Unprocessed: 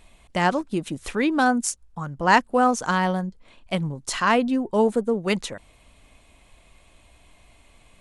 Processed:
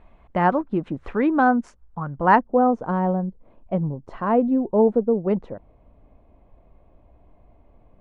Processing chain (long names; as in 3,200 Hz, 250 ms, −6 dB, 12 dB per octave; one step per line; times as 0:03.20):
Chebyshev low-pass filter 1,200 Hz, order 2, from 0:02.35 640 Hz
level +3 dB